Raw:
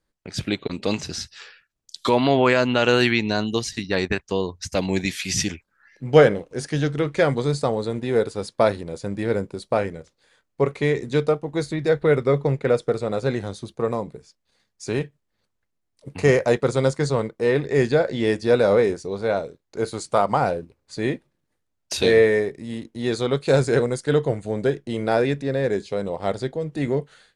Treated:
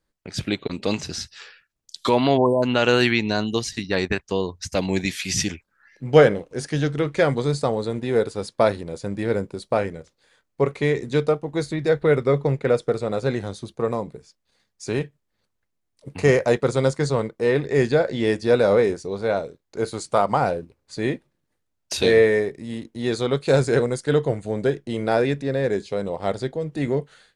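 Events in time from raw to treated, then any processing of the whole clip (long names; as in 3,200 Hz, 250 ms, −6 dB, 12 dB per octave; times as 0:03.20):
0:02.38–0:02.63: time-frequency box erased 1,100–8,100 Hz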